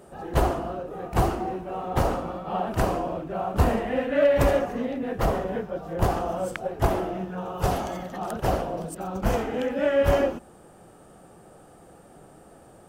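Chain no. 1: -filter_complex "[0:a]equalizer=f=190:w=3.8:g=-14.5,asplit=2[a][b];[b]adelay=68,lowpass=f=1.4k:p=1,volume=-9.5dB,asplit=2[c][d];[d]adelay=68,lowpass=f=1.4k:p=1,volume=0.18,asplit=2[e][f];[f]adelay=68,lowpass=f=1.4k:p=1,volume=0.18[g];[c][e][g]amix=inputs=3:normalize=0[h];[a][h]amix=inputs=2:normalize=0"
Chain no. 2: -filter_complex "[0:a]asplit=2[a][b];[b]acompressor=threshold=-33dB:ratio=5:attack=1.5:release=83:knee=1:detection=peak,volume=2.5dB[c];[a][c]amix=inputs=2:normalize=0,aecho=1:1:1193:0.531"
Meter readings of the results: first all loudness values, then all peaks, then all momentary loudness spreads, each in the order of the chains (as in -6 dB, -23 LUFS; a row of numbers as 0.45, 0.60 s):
-27.0, -23.5 LUFS; -10.0, -8.0 dBFS; 11, 9 LU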